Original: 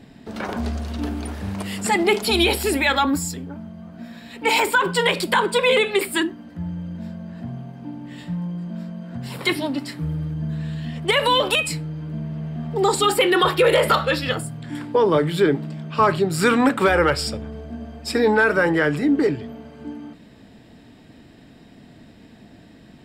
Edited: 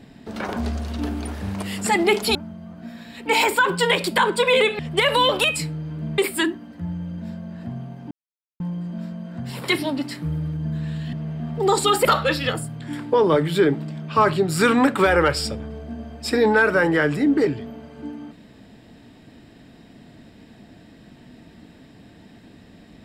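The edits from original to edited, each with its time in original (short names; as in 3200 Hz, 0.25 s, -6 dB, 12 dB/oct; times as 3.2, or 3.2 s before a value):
2.35–3.51 cut
7.88–8.37 mute
10.9–12.29 move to 5.95
13.21–13.87 cut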